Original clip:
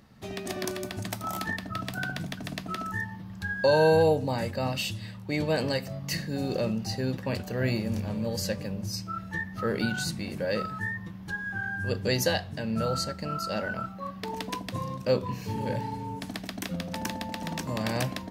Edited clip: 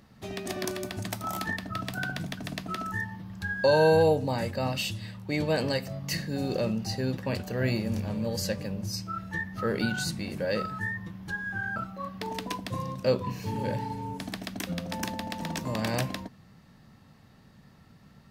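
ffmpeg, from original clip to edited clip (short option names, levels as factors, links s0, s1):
-filter_complex "[0:a]asplit=2[s0][s1];[s0]atrim=end=11.762[s2];[s1]atrim=start=13.778[s3];[s2][s3]acrossfade=d=0.004:c1=hsin:c2=hsin"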